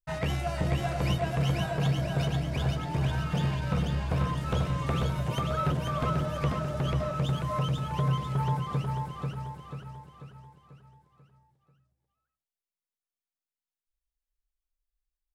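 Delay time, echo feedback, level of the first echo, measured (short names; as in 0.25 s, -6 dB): 0.49 s, 48%, -3.0 dB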